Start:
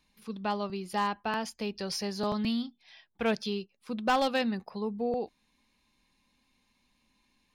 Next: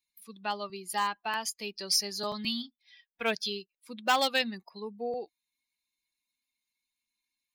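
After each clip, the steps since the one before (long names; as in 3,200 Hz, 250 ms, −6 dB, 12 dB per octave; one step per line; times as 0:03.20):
spectral dynamics exaggerated over time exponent 1.5
spectral tilt +3.5 dB per octave
level +2 dB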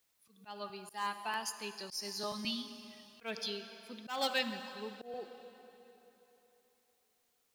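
dense smooth reverb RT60 3.5 s, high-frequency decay 0.85×, DRR 10 dB
volume swells 182 ms
bit-depth reduction 12 bits, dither triangular
level −5.5 dB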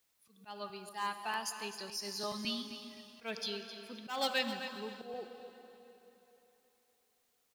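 repeating echo 261 ms, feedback 29%, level −12 dB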